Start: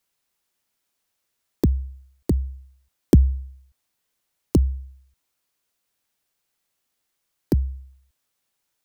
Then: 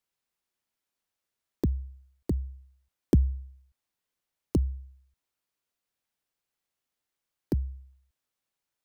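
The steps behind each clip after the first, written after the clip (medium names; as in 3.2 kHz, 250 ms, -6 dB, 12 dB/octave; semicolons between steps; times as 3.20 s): treble shelf 4.4 kHz -4.5 dB; trim -7.5 dB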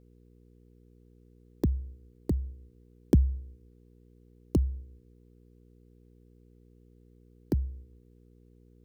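mains buzz 60 Hz, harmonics 8, -58 dBFS -4 dB/octave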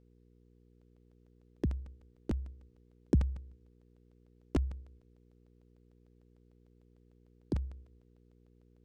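crackling interface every 0.15 s, samples 128, repeat, from 0.81 s; decimation joined by straight lines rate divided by 3×; trim -5.5 dB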